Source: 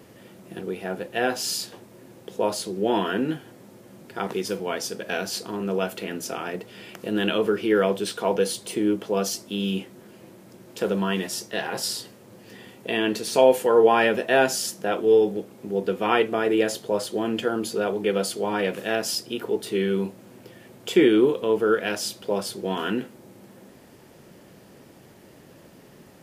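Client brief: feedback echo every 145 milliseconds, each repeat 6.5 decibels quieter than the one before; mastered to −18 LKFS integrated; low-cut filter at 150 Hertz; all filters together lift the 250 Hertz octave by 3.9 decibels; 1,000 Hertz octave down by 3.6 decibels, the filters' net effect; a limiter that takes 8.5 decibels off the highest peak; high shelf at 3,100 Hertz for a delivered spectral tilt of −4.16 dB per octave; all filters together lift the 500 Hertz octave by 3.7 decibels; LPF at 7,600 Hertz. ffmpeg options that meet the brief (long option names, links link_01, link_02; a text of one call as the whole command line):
ffmpeg -i in.wav -af "highpass=150,lowpass=7600,equalizer=frequency=250:width_type=o:gain=5,equalizer=frequency=500:width_type=o:gain=4.5,equalizer=frequency=1000:width_type=o:gain=-8.5,highshelf=frequency=3100:gain=5,alimiter=limit=-10.5dB:level=0:latency=1,aecho=1:1:145|290|435|580|725|870:0.473|0.222|0.105|0.0491|0.0231|0.0109,volume=4dB" out.wav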